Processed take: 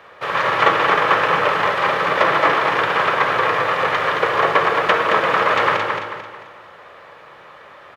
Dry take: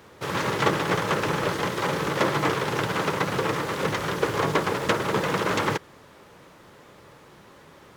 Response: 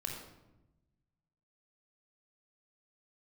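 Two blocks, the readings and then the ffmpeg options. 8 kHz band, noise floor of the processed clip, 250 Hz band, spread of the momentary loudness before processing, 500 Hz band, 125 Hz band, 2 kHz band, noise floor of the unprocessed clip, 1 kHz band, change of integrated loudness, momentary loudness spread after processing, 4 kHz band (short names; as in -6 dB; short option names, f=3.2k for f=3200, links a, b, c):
n/a, -43 dBFS, -2.5 dB, 3 LU, +6.0 dB, -4.5 dB, +10.5 dB, -51 dBFS, +11.0 dB, +8.5 dB, 5 LU, +6.0 dB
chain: -filter_complex "[0:a]acrossover=split=500 3300:gain=0.178 1 0.1[a][b][c];[a][b][c]amix=inputs=3:normalize=0,aecho=1:1:221|442|663|884|1105:0.562|0.219|0.0855|0.0334|0.013,asplit=2[d][e];[1:a]atrim=start_sample=2205,lowshelf=f=290:g=-9.5[f];[e][f]afir=irnorm=-1:irlink=0,volume=0.5dB[g];[d][g]amix=inputs=2:normalize=0,volume=5dB"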